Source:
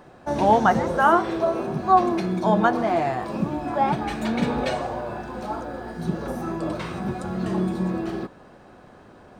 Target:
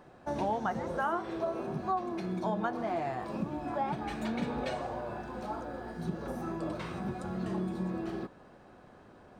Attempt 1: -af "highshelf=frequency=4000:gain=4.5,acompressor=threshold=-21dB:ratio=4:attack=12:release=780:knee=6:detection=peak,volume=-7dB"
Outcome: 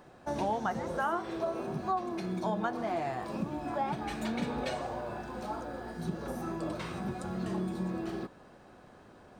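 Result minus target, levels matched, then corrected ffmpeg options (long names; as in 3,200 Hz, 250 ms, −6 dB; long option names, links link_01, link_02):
8,000 Hz band +5.0 dB
-af "highshelf=frequency=4000:gain=-2,acompressor=threshold=-21dB:ratio=4:attack=12:release=780:knee=6:detection=peak,volume=-7dB"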